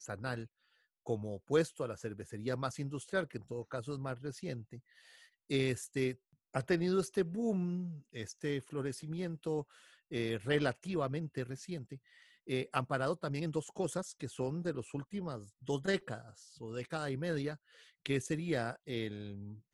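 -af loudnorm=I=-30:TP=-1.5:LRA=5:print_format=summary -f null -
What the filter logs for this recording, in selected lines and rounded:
Input Integrated:    -37.9 LUFS
Input True Peak:     -16.0 dBTP
Input LRA:             3.4 LU
Input Threshold:     -48.4 LUFS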